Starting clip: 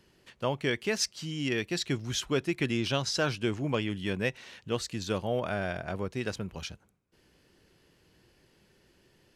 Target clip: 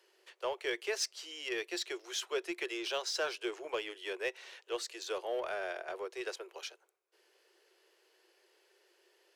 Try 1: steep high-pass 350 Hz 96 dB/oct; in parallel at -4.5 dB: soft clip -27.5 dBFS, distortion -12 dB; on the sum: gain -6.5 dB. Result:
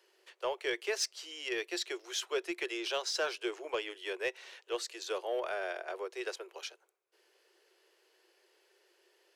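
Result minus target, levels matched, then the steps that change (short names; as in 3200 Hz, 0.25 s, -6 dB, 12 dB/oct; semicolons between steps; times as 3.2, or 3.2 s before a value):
soft clip: distortion -7 dB
change: soft clip -36 dBFS, distortion -6 dB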